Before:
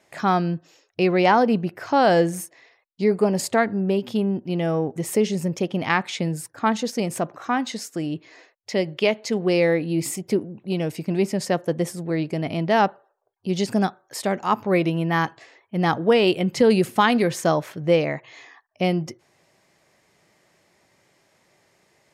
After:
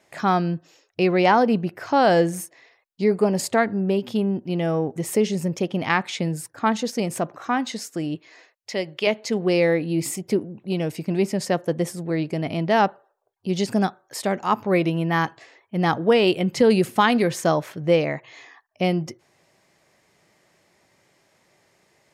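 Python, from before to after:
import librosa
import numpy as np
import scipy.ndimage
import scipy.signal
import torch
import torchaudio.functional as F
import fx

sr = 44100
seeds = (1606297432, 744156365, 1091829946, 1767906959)

y = fx.low_shelf(x, sr, hz=440.0, db=-8.0, at=(8.15, 9.07))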